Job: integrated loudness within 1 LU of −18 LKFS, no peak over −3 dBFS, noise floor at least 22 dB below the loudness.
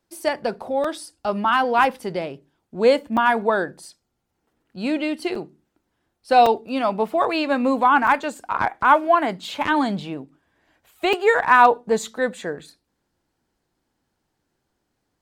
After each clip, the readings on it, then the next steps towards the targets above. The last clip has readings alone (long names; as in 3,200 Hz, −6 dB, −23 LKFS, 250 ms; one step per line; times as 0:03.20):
number of dropouts 6; longest dropout 4.1 ms; integrated loudness −20.5 LKFS; sample peak −2.5 dBFS; target loudness −18.0 LKFS
→ repair the gap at 0:00.84/0:03.17/0:05.35/0:06.46/0:08.07/0:11.13, 4.1 ms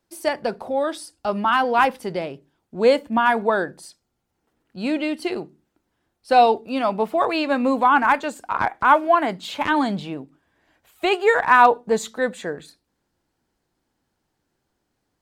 number of dropouts 0; integrated loudness −20.5 LKFS; sample peak −2.5 dBFS; target loudness −18.0 LKFS
→ level +2.5 dB
brickwall limiter −3 dBFS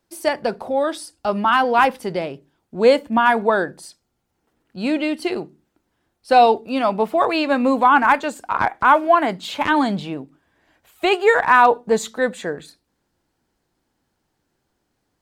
integrated loudness −18.5 LKFS; sample peak −3.0 dBFS; background noise floor −73 dBFS